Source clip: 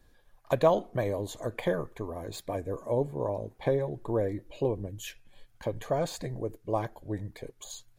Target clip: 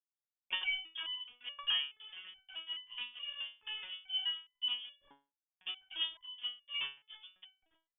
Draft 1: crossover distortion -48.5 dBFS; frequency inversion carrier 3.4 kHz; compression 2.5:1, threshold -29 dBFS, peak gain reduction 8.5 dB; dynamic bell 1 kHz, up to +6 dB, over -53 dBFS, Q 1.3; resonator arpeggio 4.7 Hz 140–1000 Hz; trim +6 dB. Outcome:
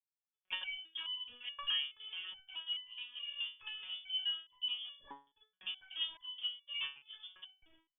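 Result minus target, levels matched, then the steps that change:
compression: peak gain reduction +8.5 dB; crossover distortion: distortion -8 dB
change: crossover distortion -38.5 dBFS; remove: compression 2.5:1, threshold -29 dBFS, peak gain reduction 8.5 dB

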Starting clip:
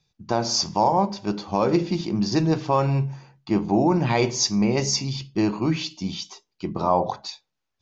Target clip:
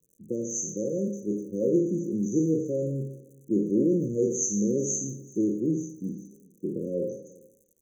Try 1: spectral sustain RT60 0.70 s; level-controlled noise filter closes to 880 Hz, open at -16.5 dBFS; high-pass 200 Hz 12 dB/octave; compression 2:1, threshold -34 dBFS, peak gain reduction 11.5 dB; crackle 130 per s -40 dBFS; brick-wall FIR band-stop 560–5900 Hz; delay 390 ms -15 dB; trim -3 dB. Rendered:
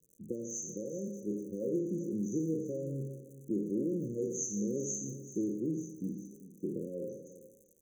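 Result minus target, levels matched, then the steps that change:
compression: peak gain reduction +11.5 dB; echo-to-direct +9 dB
change: delay 390 ms -24 dB; remove: compression 2:1, threshold -34 dBFS, peak gain reduction 11.5 dB

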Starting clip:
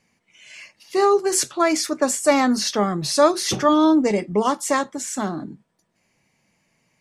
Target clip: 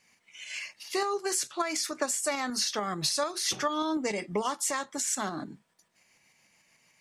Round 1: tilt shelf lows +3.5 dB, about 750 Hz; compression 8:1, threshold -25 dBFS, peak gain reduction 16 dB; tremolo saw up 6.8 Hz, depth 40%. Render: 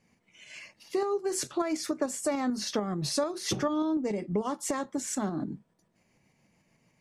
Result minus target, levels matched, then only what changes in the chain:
1 kHz band -2.5 dB
change: tilt shelf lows -6.5 dB, about 750 Hz

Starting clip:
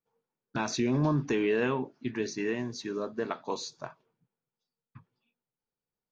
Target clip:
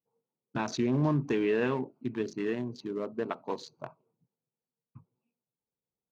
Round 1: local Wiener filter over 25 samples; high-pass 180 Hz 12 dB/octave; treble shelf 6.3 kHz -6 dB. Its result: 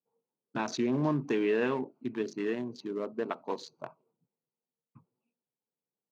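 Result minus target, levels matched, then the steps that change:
125 Hz band -4.5 dB
change: high-pass 51 Hz 12 dB/octave

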